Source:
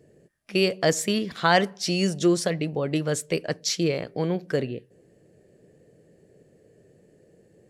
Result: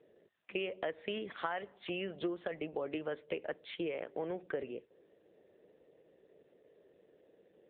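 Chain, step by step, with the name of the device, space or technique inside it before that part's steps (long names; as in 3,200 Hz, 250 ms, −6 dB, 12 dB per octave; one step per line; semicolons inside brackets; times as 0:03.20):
voicemail (band-pass filter 400–3,200 Hz; downward compressor 10 to 1, threshold −29 dBFS, peak gain reduction 15 dB; level −3.5 dB; AMR narrowband 7.95 kbit/s 8,000 Hz)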